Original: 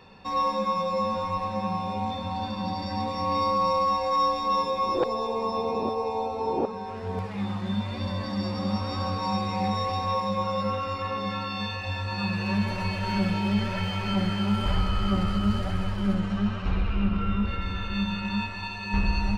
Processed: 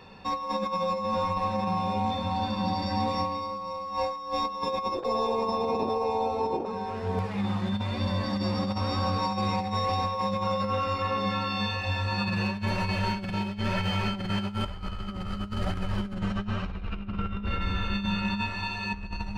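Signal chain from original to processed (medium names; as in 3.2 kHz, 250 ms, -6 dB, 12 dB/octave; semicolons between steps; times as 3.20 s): compressor with a negative ratio -28 dBFS, ratio -0.5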